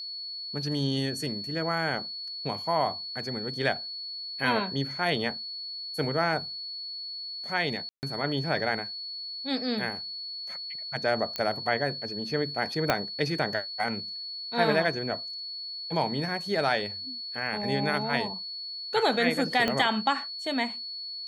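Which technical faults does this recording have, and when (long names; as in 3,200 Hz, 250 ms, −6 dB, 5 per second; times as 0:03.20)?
whistle 4,400 Hz −35 dBFS
0:07.89–0:08.03: drop-out 139 ms
0:11.36: click −16 dBFS
0:12.90: click −8 dBFS
0:19.68: click −13 dBFS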